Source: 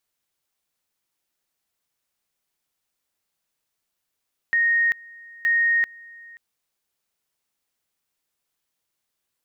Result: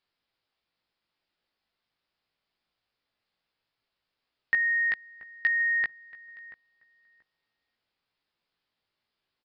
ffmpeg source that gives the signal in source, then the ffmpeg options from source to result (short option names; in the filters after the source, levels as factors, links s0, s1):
-f lavfi -i "aevalsrc='pow(10,(-16.5-24.5*gte(mod(t,0.92),0.39))/20)*sin(2*PI*1860*t)':d=1.84:s=44100"
-filter_complex "[0:a]aresample=11025,aresample=44100,asplit=2[s0][s1];[s1]adelay=18,volume=0.562[s2];[s0][s2]amix=inputs=2:normalize=0,asplit=2[s3][s4];[s4]adelay=682,lowpass=f=1200:p=1,volume=0.168,asplit=2[s5][s6];[s6]adelay=682,lowpass=f=1200:p=1,volume=0.24[s7];[s3][s5][s7]amix=inputs=3:normalize=0"